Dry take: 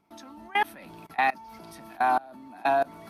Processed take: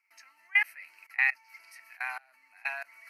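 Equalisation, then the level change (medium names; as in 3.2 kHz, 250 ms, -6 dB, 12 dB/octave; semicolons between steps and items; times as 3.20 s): resonant high-pass 2.1 kHz, resonance Q 4.6; Butterworth band-stop 3.5 kHz, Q 2.7; -5.0 dB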